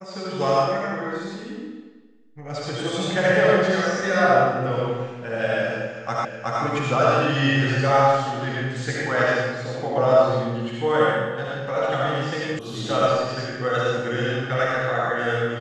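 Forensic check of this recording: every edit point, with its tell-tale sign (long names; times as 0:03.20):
0:06.25: the same again, the last 0.37 s
0:12.59: cut off before it has died away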